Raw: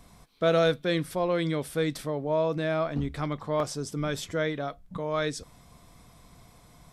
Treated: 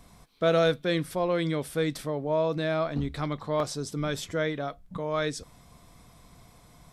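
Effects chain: 2.44–4.14 bell 4000 Hz +7.5 dB 0.23 oct

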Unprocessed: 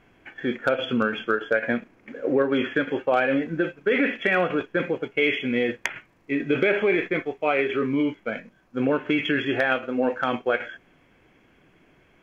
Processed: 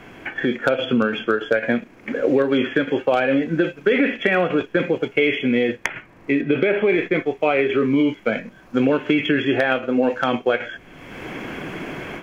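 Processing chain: dynamic EQ 1400 Hz, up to -4 dB, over -36 dBFS, Q 0.87; AGC gain up to 16 dB; 6.41–6.89 air absorption 180 m; three-band squash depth 70%; gain -5 dB

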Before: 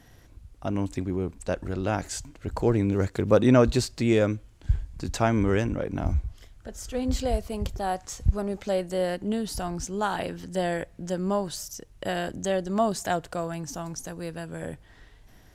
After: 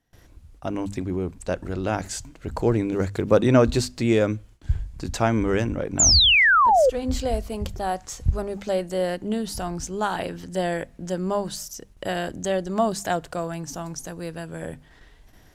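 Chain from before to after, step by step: notches 50/100/150/200/250 Hz; gate with hold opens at -44 dBFS; painted sound fall, 5.99–6.9, 480–7500 Hz -18 dBFS; gain +2 dB

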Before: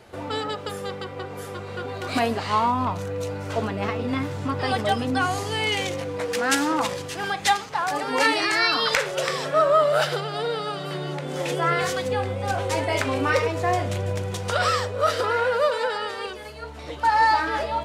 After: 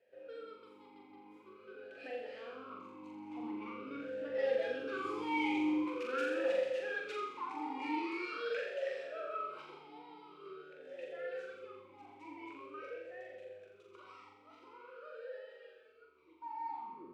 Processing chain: tape stop at the end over 0.55 s; Doppler pass-by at 5.99, 5 m/s, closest 4.1 m; soft clip -26.5 dBFS, distortion -10 dB; flutter echo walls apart 7.6 m, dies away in 0.83 s; Schroeder reverb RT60 2.9 s, combs from 25 ms, DRR 13 dB; speed mistake 24 fps film run at 25 fps; vowel sweep e-u 0.45 Hz; gain +3 dB

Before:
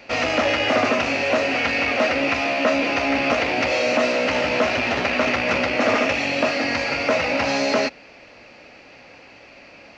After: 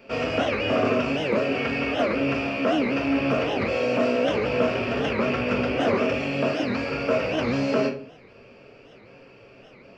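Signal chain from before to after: thirty-one-band EQ 125 Hz +12 dB, 400 Hz +9 dB, 800 Hz -8 dB, 2000 Hz -11 dB, 4000 Hz -12 dB, 6300 Hz -12 dB; shoebox room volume 370 m³, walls furnished, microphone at 1.6 m; record warp 78 rpm, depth 250 cents; gain -5.5 dB

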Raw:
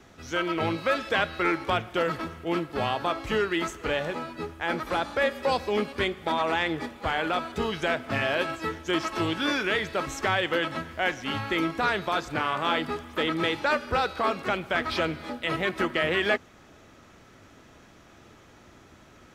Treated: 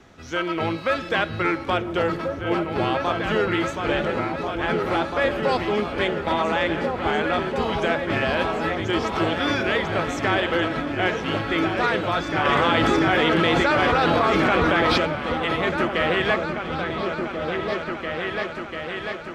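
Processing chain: high shelf 9400 Hz -11.5 dB; repeats that get brighter 0.693 s, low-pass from 200 Hz, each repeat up 2 oct, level 0 dB; 12.45–14.98 fast leveller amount 100%; gain +2.5 dB

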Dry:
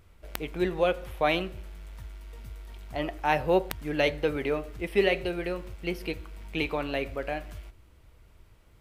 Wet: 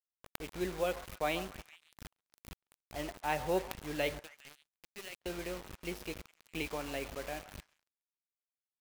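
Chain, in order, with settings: 4.19–5.26 pre-emphasis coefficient 0.9; bit-crush 6-bit; delay with a stepping band-pass 0.137 s, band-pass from 940 Hz, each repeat 0.7 oct, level -10 dB; crossover distortion -50.5 dBFS; gain -8.5 dB

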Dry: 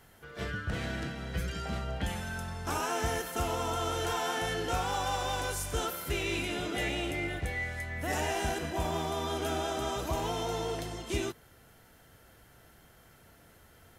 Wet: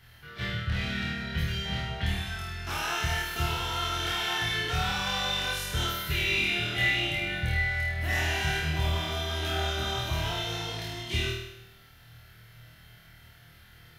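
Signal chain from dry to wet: graphic EQ 125/250/500/1000/2000/4000/8000 Hz +8/-8/-8/-5/+4/+7/-10 dB; on a send: flutter echo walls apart 4.4 m, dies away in 0.84 s

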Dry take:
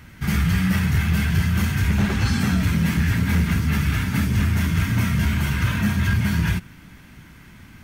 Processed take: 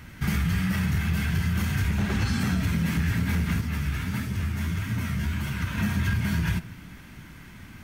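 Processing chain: compressor, threshold -22 dBFS, peak gain reduction 7 dB; 3.61–5.78 flange 1.6 Hz, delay 7.6 ms, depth 8.3 ms, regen +25%; reverb RT60 0.65 s, pre-delay 5 ms, DRR 13 dB

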